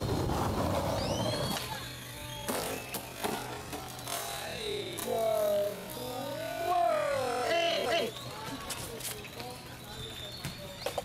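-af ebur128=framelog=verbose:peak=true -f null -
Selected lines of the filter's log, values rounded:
Integrated loudness:
  I:         -33.8 LUFS
  Threshold: -43.8 LUFS
Loudness range:
  LRA:         5.5 LU
  Threshold: -53.5 LUFS
  LRA low:   -36.7 LUFS
  LRA high:  -31.2 LUFS
True peak:
  Peak:      -17.4 dBFS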